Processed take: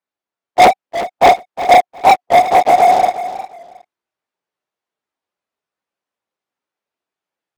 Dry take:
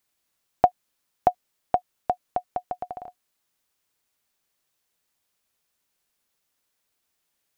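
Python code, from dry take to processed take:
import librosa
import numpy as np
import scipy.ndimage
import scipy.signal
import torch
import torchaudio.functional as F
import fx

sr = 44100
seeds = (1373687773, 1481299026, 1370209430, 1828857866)

p1 = fx.phase_scramble(x, sr, seeds[0], window_ms=100)
p2 = fx.bandpass_q(p1, sr, hz=600.0, q=0.52)
p3 = fx.rider(p2, sr, range_db=5, speed_s=0.5)
p4 = p2 + (p3 * 10.0 ** (2.0 / 20.0))
p5 = fx.leveller(p4, sr, passes=5)
p6 = p5 + fx.echo_feedback(p5, sr, ms=360, feedback_pct=20, wet_db=-13.0, dry=0)
y = fx.record_warp(p6, sr, rpm=45.0, depth_cents=100.0)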